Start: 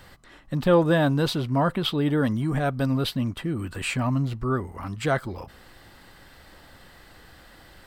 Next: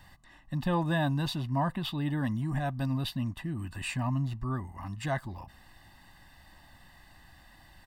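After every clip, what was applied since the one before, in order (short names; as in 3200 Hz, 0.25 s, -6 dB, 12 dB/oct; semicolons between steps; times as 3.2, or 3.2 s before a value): comb 1.1 ms, depth 81%; gain -9 dB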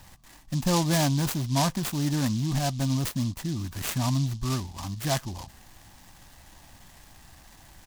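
noise-modulated delay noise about 4600 Hz, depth 0.11 ms; gain +4.5 dB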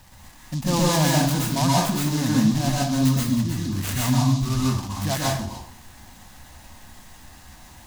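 plate-style reverb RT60 0.56 s, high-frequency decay 0.75×, pre-delay 0.11 s, DRR -4.5 dB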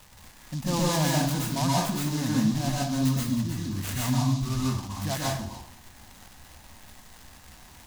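crackle 340/s -33 dBFS; gain -5 dB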